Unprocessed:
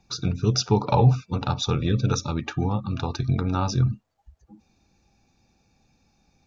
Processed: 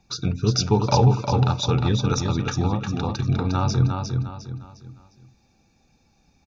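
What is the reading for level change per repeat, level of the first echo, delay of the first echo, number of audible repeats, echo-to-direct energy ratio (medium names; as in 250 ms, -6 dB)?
-9.0 dB, -5.0 dB, 355 ms, 4, -4.5 dB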